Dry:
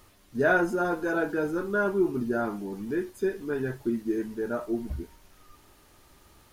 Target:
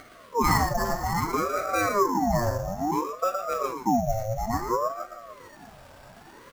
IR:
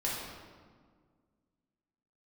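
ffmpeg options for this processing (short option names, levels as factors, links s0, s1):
-filter_complex "[0:a]asplit=2[s0][s1];[s1]acompressor=mode=upward:threshold=0.0447:ratio=2.5,volume=0.891[s2];[s0][s2]amix=inputs=2:normalize=0,highpass=f=200:w=0.5412,highpass=f=200:w=1.3066,equalizer=f=220:t=q:w=4:g=10,equalizer=f=1700:t=q:w=4:g=-5,equalizer=f=2800:t=q:w=4:g=-6,lowpass=f=3800:w=0.5412,lowpass=f=3800:w=1.3066,asplit=2[s3][s4];[s4]adelay=116.6,volume=0.447,highshelf=f=4000:g=-2.62[s5];[s3][s5]amix=inputs=2:normalize=0,acrusher=samples=7:mix=1:aa=0.000001,asplit=2[s6][s7];[s7]aecho=0:1:451|902|1353:0.106|0.0466|0.0205[s8];[s6][s8]amix=inputs=2:normalize=0,aeval=exprs='val(0)*sin(2*PI*640*n/s+640*0.5/0.59*sin(2*PI*0.59*n/s))':c=same,volume=0.75"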